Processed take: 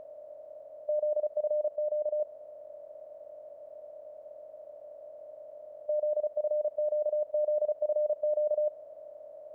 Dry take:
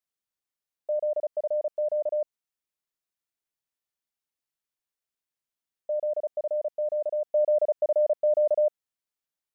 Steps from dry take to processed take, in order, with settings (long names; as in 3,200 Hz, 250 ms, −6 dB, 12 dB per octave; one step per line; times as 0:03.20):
compressor on every frequency bin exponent 0.2
0:01.76–0:02.20: high-frequency loss of the air 480 metres
level −6.5 dB